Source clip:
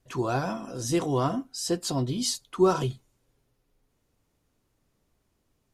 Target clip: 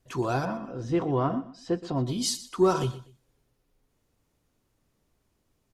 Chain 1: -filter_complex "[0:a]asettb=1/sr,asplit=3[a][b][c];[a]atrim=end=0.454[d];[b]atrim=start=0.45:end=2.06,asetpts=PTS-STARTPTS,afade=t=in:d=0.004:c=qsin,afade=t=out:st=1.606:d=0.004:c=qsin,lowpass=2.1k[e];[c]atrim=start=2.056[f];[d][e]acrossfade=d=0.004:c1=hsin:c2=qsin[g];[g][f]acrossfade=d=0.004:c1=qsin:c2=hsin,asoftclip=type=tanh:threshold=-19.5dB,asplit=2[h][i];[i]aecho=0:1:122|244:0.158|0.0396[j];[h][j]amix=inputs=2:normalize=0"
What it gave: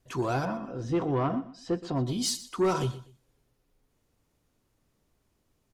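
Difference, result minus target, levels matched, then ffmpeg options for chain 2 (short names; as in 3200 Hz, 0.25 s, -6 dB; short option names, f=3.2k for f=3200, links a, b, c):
soft clip: distortion +16 dB
-filter_complex "[0:a]asettb=1/sr,asplit=3[a][b][c];[a]atrim=end=0.454[d];[b]atrim=start=0.45:end=2.06,asetpts=PTS-STARTPTS,afade=t=in:d=0.004:c=qsin,afade=t=out:st=1.606:d=0.004:c=qsin,lowpass=2.1k[e];[c]atrim=start=2.056[f];[d][e]acrossfade=d=0.004:c1=hsin:c2=qsin[g];[g][f]acrossfade=d=0.004:c1=qsin:c2=hsin,asoftclip=type=tanh:threshold=-8dB,asplit=2[h][i];[i]aecho=0:1:122|244:0.158|0.0396[j];[h][j]amix=inputs=2:normalize=0"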